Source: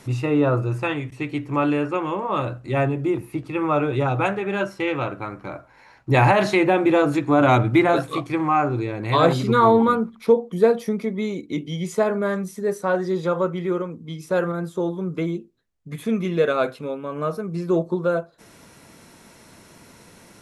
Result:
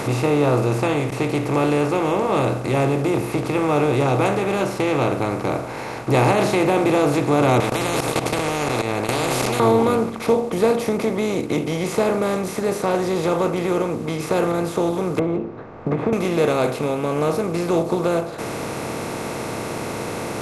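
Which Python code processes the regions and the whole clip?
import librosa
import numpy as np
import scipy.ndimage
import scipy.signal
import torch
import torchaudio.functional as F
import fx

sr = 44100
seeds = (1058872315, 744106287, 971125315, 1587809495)

y = fx.chain(x, sr, fx.low_shelf(hz=340.0, db=4.0),
    fx.level_steps(step_db=22),
    fx.spectral_comp(ratio=10.0), at=(7.6, 9.6))
y = fx.chain(y, sr, fx.lowpass(hz=1200.0, slope=24),
    fx.band_squash(depth_pct=100), at=(15.19, 16.13))
y = fx.bin_compress(y, sr, power=0.4)
y = fx.dynamic_eq(y, sr, hz=1500.0, q=1.1, threshold_db=-29.0, ratio=4.0, max_db=-6)
y = y * 10.0 ** (-4.0 / 20.0)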